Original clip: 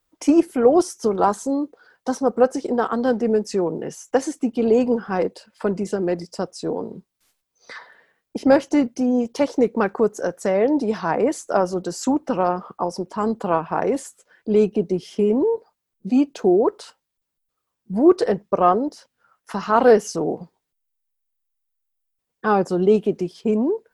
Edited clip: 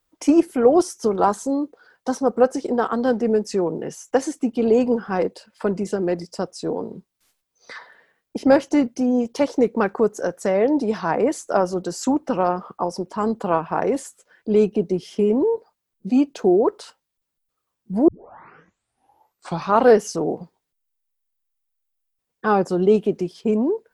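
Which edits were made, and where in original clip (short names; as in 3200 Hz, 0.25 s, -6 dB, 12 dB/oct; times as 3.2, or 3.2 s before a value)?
18.08 tape start 1.74 s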